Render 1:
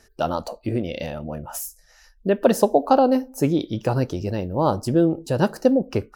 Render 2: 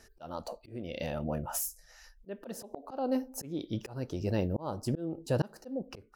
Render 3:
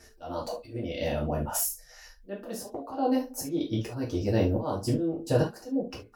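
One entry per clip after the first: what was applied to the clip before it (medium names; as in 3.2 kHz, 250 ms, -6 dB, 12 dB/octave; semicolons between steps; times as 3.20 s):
slow attack 578 ms; trim -2.5 dB
gated-style reverb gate 100 ms falling, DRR -4 dB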